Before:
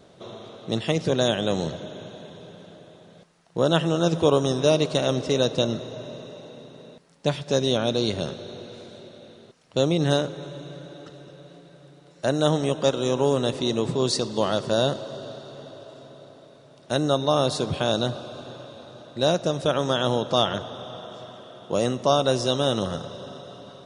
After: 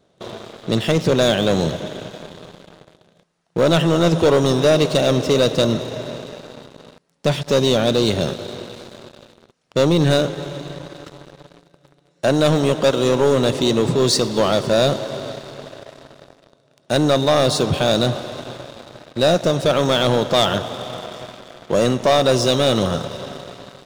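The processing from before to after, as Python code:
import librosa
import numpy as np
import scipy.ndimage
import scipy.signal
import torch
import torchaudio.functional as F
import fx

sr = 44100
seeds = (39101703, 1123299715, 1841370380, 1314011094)

y = fx.leveller(x, sr, passes=3)
y = F.gain(torch.from_numpy(y), -2.5).numpy()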